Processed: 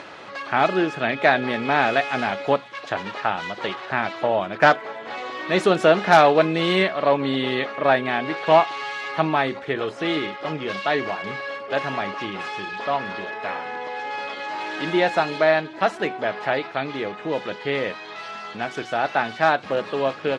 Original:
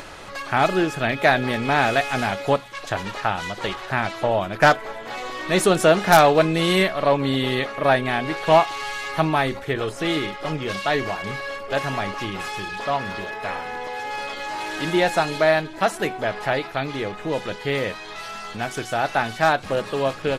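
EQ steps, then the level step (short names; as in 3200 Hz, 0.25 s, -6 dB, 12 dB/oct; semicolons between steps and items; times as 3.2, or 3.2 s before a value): BPF 180–4100 Hz; 0.0 dB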